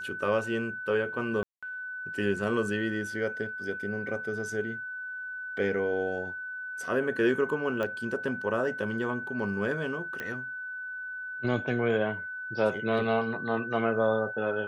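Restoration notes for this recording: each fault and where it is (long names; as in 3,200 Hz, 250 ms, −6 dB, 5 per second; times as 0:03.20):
whistle 1,500 Hz −35 dBFS
0:01.43–0:01.63: drop-out 196 ms
0:07.83: click −20 dBFS
0:10.20: click −21 dBFS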